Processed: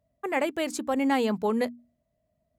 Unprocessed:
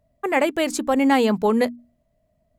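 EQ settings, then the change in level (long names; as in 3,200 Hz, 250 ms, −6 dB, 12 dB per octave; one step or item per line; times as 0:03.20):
high-pass filter 51 Hz
−7.0 dB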